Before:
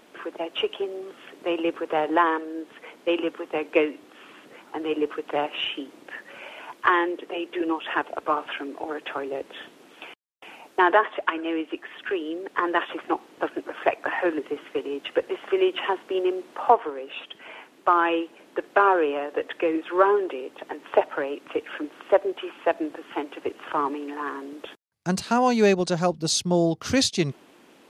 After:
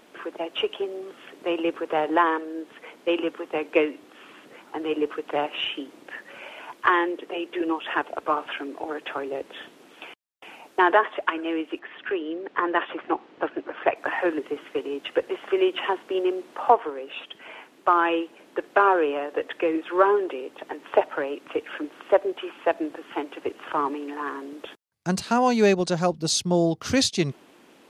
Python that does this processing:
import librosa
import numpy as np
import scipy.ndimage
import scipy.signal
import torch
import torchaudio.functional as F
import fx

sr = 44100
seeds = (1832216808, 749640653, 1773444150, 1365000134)

y = fx.lowpass(x, sr, hz=3400.0, slope=12, at=(11.79, 13.96))